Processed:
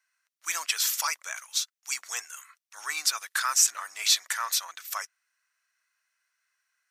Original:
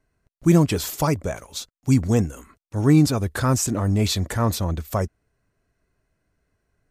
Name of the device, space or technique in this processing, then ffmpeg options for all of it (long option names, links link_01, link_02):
headphones lying on a table: -af "highpass=frequency=1300:width=0.5412,highpass=frequency=1300:width=1.3066,equalizer=frequency=5800:width_type=o:width=0.26:gain=5,volume=3dB"